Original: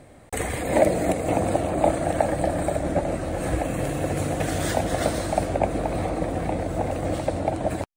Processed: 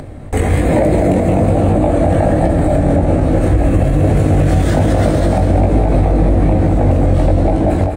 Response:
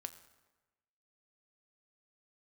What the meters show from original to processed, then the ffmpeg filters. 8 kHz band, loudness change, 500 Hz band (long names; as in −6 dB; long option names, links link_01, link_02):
0.0 dB, +11.5 dB, +8.5 dB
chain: -filter_complex "[0:a]highshelf=frequency=4000:gain=-8.5,acrossover=split=420[link_01][link_02];[link_01]acontrast=73[link_03];[link_03][link_02]amix=inputs=2:normalize=0,lowshelf=frequency=75:gain=9.5,aecho=1:1:202|404|606|808|1010:0.422|0.194|0.0892|0.041|0.0189,flanger=delay=18.5:depth=2.8:speed=1.2,bandreject=frequency=64.61:width_type=h:width=4,bandreject=frequency=129.22:width_type=h:width=4,bandreject=frequency=193.83:width_type=h:width=4,bandreject=frequency=258.44:width_type=h:width=4,bandreject=frequency=323.05:width_type=h:width=4,bandreject=frequency=387.66:width_type=h:width=4,bandreject=frequency=452.27:width_type=h:width=4,bandreject=frequency=516.88:width_type=h:width=4,bandreject=frequency=581.49:width_type=h:width=4,bandreject=frequency=646.1:width_type=h:width=4,bandreject=frequency=710.71:width_type=h:width=4,bandreject=frequency=775.32:width_type=h:width=4,bandreject=frequency=839.93:width_type=h:width=4,bandreject=frequency=904.54:width_type=h:width=4,bandreject=frequency=969.15:width_type=h:width=4,bandreject=frequency=1033.76:width_type=h:width=4,bandreject=frequency=1098.37:width_type=h:width=4,bandreject=frequency=1162.98:width_type=h:width=4,bandreject=frequency=1227.59:width_type=h:width=4,bandreject=frequency=1292.2:width_type=h:width=4,bandreject=frequency=1356.81:width_type=h:width=4,bandreject=frequency=1421.42:width_type=h:width=4,bandreject=frequency=1486.03:width_type=h:width=4,bandreject=frequency=1550.64:width_type=h:width=4,bandreject=frequency=1615.25:width_type=h:width=4,bandreject=frequency=1679.86:width_type=h:width=4,bandreject=frequency=1744.47:width_type=h:width=4,bandreject=frequency=1809.08:width_type=h:width=4,bandreject=frequency=1873.69:width_type=h:width=4,bandreject=frequency=1938.3:width_type=h:width=4,bandreject=frequency=2002.91:width_type=h:width=4,bandreject=frequency=2067.52:width_type=h:width=4,bandreject=frequency=2132.13:width_type=h:width=4,bandreject=frequency=2196.74:width_type=h:width=4,acompressor=mode=upward:threshold=-37dB:ratio=2.5,asplit=2[link_04][link_05];[1:a]atrim=start_sample=2205[link_06];[link_05][link_06]afir=irnorm=-1:irlink=0,volume=8dB[link_07];[link_04][link_07]amix=inputs=2:normalize=0,alimiter=level_in=6.5dB:limit=-1dB:release=50:level=0:latency=1,volume=-3dB"